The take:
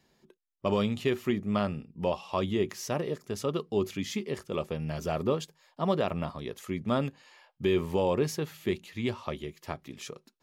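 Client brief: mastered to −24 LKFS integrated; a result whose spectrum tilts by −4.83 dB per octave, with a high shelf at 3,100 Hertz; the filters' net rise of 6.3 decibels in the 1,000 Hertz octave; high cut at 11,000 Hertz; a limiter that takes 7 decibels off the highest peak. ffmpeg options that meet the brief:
ffmpeg -i in.wav -af "lowpass=11000,equalizer=frequency=1000:width_type=o:gain=7,highshelf=frequency=3100:gain=7.5,volume=8dB,alimiter=limit=-9.5dB:level=0:latency=1" out.wav

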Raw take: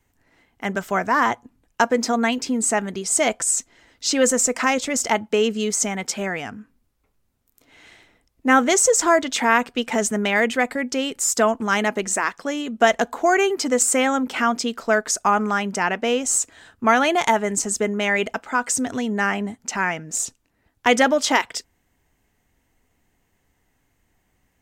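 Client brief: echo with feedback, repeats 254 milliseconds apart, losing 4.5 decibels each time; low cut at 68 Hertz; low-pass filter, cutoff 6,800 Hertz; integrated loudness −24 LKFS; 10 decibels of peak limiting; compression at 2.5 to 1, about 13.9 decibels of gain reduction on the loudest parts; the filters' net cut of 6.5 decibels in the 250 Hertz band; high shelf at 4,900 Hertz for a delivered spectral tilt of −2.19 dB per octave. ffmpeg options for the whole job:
ffmpeg -i in.wav -af "highpass=68,lowpass=6800,equalizer=frequency=250:width_type=o:gain=-7.5,highshelf=frequency=4900:gain=-5,acompressor=threshold=-34dB:ratio=2.5,alimiter=level_in=1dB:limit=-24dB:level=0:latency=1,volume=-1dB,aecho=1:1:254|508|762|1016|1270|1524|1778|2032|2286:0.596|0.357|0.214|0.129|0.0772|0.0463|0.0278|0.0167|0.01,volume=10dB" out.wav

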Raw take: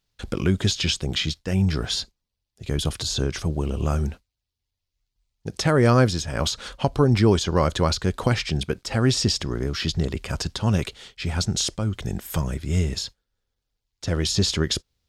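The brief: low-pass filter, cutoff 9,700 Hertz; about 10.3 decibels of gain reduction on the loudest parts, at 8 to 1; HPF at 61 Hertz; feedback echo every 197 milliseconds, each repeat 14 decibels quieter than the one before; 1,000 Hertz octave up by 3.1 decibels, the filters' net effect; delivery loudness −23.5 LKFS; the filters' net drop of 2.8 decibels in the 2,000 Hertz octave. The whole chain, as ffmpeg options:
ffmpeg -i in.wav -af "highpass=61,lowpass=9700,equalizer=frequency=1000:width_type=o:gain=5.5,equalizer=frequency=2000:width_type=o:gain=-6,acompressor=threshold=-23dB:ratio=8,aecho=1:1:197|394:0.2|0.0399,volume=6dB" out.wav

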